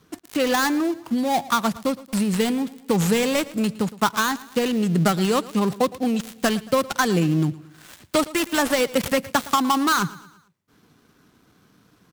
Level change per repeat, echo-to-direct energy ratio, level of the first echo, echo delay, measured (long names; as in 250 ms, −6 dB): −6.5 dB, −18.0 dB, −19.0 dB, 113 ms